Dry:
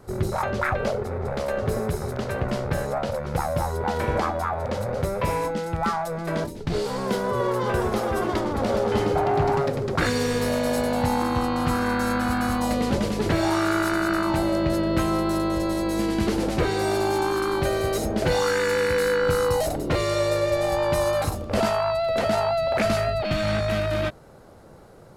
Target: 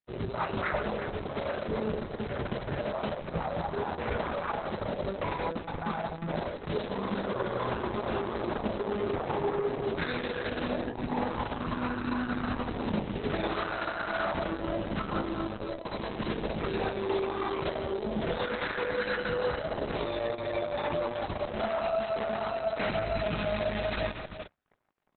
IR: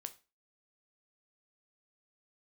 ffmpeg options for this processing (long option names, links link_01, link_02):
-filter_complex "[0:a]aeval=exprs='0.266*(cos(1*acos(clip(val(0)/0.266,-1,1)))-cos(1*PI/2))+0.00188*(cos(3*acos(clip(val(0)/0.266,-1,1)))-cos(3*PI/2))+0.00188*(cos(5*acos(clip(val(0)/0.266,-1,1)))-cos(5*PI/2))+0.00531*(cos(7*acos(clip(val(0)/0.266,-1,1)))-cos(7*PI/2))':channel_layout=same,acrusher=bits=5:mix=0:aa=0.5,aecho=1:1:4.8:0.41,flanger=delay=17:depth=5.9:speed=0.25,asettb=1/sr,asplit=3[link_01][link_02][link_03];[link_01]atrim=end=18.994[link_04];[link_02]atrim=start=18.99:end=21.18,asetpts=PTS-STARTPTS,afade=type=in:duration=0.004:curve=qsin,afade=type=out:start_time=2.186:duration=0.004:curve=qsin,lowshelf=frequency=81:gain=-2.5[link_05];[link_03]atrim=start=21.176[link_06];[link_04][link_05]acrossfade=duration=0.004:curve1=hsin:curve2=qsin[link_07];[link_07][link_06]acrossfade=duration=0.004:curve1=qsin:curve2=hsin,aecho=1:1:42|68|90|98|170|357:0.158|0.126|0.133|0.141|0.266|0.316,aeval=exprs='(tanh(7.08*val(0)+0.45)-tanh(0.45))/7.08':channel_layout=same,acontrast=86,highpass=frequency=49:width=0.5412,highpass=frequency=49:width=1.3066,alimiter=limit=-14dB:level=0:latency=1:release=12,equalizer=frequency=7200:width=1.5:gain=3.5,volume=-7.5dB" -ar 48000 -c:a libopus -b:a 6k